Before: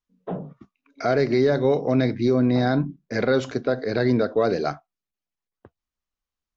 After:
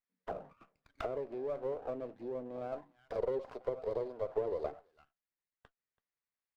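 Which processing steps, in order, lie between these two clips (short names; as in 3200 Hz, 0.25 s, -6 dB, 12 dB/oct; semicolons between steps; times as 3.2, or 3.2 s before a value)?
compressor 16:1, threshold -32 dBFS, peak gain reduction 17.5 dB; 2.72–4.72 graphic EQ 125/250/500/1000/2000/4000 Hz -6/-5/+3/+8/-11/+12 dB; echo 0.332 s -22.5 dB; auto-wah 400–2100 Hz, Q 3.1, down, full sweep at -29.5 dBFS; running maximum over 9 samples; gain +3.5 dB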